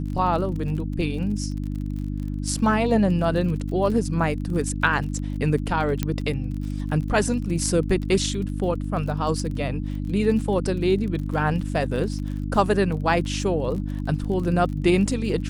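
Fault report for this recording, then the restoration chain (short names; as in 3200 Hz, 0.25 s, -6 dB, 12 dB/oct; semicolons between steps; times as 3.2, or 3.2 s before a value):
crackle 37/s -32 dBFS
hum 50 Hz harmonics 6 -28 dBFS
6.03 pop -9 dBFS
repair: de-click; de-hum 50 Hz, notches 6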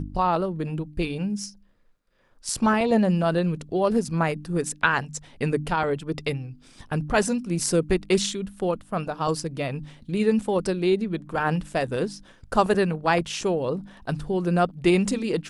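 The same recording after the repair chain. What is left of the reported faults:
none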